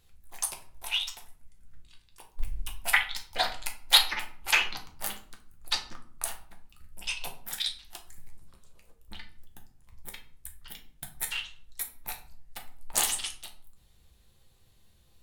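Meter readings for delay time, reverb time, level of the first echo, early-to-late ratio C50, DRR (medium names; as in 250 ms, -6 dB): no echo, 0.55 s, no echo, 10.5 dB, 2.0 dB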